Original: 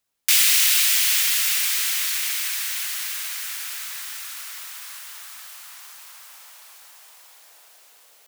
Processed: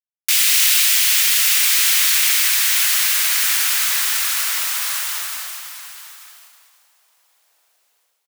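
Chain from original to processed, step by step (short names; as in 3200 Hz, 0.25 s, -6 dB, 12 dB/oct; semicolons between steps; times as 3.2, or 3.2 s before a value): gate -39 dBFS, range -27 dB; AGC gain up to 15 dB; 3.55–4.15 hard clip -11 dBFS, distortion -35 dB; echo 0.888 s -13 dB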